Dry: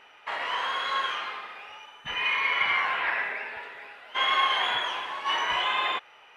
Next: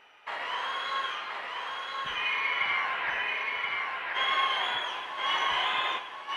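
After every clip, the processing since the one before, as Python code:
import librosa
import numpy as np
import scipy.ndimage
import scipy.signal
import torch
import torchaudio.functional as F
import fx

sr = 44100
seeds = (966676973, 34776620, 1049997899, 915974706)

y = x + 10.0 ** (-3.5 / 20.0) * np.pad(x, (int(1028 * sr / 1000.0), 0))[:len(x)]
y = F.gain(torch.from_numpy(y), -3.5).numpy()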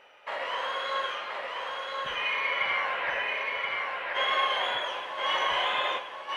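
y = fx.peak_eq(x, sr, hz=550.0, db=13.0, octaves=0.36)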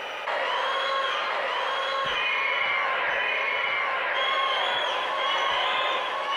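y = fx.hum_notches(x, sr, base_hz=50, count=2)
y = fx.env_flatten(y, sr, amount_pct=70)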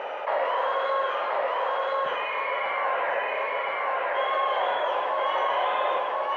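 y = fx.bandpass_q(x, sr, hz=640.0, q=1.2)
y = F.gain(torch.from_numpy(y), 5.0).numpy()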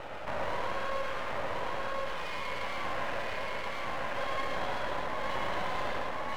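y = np.maximum(x, 0.0)
y = y + 10.0 ** (-4.5 / 20.0) * np.pad(y, (int(112 * sr / 1000.0), 0))[:len(y)]
y = F.gain(torch.from_numpy(y), -5.5).numpy()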